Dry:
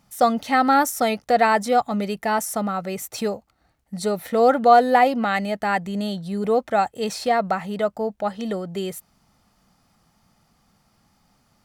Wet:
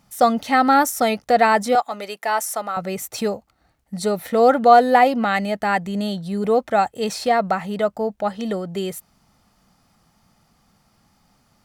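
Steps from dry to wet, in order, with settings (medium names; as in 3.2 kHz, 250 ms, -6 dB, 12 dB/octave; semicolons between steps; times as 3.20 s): 1.75–2.77 s: high-pass 550 Hz 12 dB/octave; trim +2 dB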